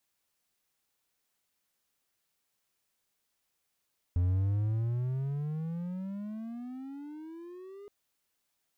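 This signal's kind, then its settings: gliding synth tone triangle, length 3.72 s, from 86.7 Hz, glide +27 st, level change -21 dB, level -22 dB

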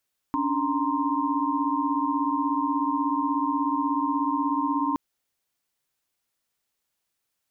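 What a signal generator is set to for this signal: chord C#4/D4/A#5/C6 sine, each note -28 dBFS 4.62 s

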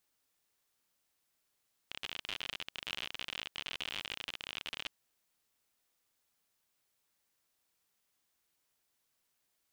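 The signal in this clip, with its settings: random clicks 57 per s -23 dBFS 3.00 s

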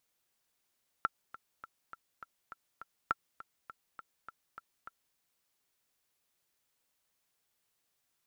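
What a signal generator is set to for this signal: metronome 204 bpm, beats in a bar 7, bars 2, 1.35 kHz, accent 17.5 dB -15.5 dBFS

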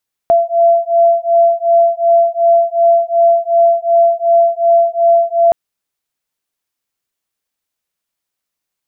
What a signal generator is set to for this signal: beating tones 677 Hz, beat 2.7 Hz, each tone -11 dBFS 5.22 s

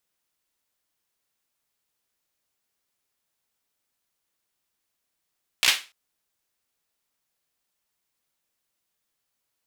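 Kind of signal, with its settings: hand clap length 0.29 s, apart 16 ms, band 2.7 kHz, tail 0.29 s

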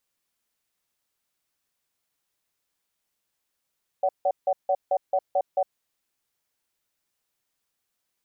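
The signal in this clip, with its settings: cadence 569 Hz, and 750 Hz, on 0.06 s, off 0.16 s, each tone -22 dBFS 1.76 s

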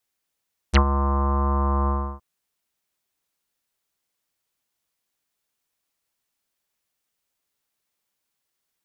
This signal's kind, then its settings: synth note square C#2 24 dB/octave, low-pass 1.1 kHz, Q 12, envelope 3.5 oct, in 0.05 s, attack 27 ms, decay 0.08 s, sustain -9 dB, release 0.32 s, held 1.15 s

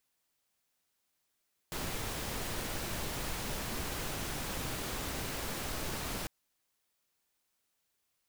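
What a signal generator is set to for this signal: noise pink, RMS -37.5 dBFS 4.55 s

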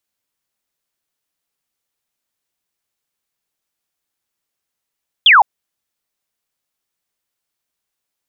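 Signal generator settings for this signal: laser zap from 3.6 kHz, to 750 Hz, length 0.16 s sine, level -4.5 dB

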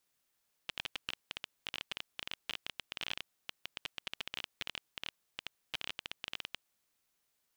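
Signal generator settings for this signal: random clicks 17 per s -20.5 dBFS 5.97 s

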